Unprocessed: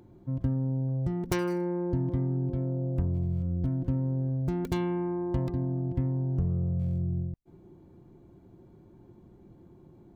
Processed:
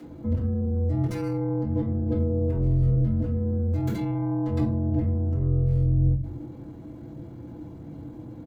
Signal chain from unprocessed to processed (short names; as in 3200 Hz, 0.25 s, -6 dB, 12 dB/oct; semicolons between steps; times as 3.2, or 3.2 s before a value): HPF 160 Hz 12 dB/oct; negative-ratio compressor -37 dBFS, ratio -1; shoebox room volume 33 m³, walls mixed, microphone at 2.2 m; frequency shift -44 Hz; tempo 1.2×; gain -2 dB